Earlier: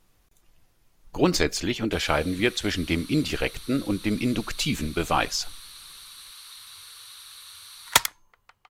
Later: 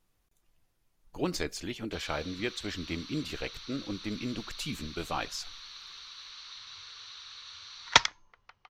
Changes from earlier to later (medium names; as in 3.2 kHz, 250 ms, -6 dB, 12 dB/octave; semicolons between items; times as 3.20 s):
speech -10.5 dB; background: add elliptic low-pass 6 kHz, stop band 50 dB